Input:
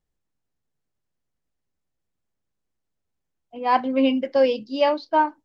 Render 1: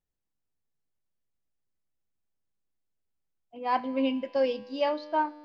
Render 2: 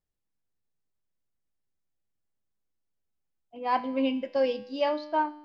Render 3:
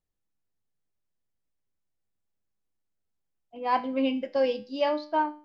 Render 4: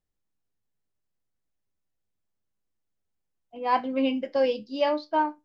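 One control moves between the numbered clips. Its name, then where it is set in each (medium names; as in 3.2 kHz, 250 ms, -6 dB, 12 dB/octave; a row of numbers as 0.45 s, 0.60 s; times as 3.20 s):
feedback comb, decay: 2.2 s, 0.94 s, 0.42 s, 0.19 s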